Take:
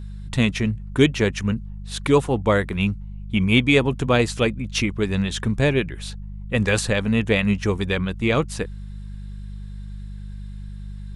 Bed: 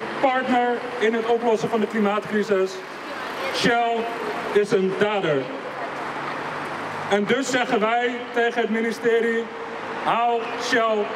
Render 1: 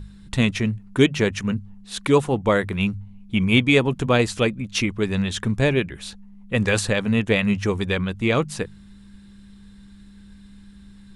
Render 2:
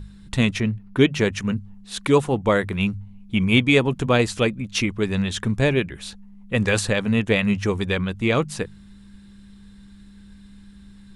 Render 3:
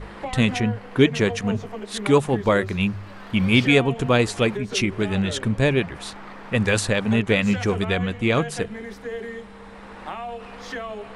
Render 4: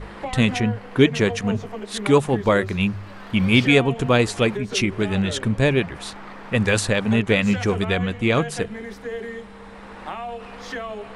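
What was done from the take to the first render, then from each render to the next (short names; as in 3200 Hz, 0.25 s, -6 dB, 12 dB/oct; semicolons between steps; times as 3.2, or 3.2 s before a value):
de-hum 50 Hz, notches 3
0.6–1.1 bell 7900 Hz -14.5 dB 0.65 oct
add bed -12.5 dB
gain +1 dB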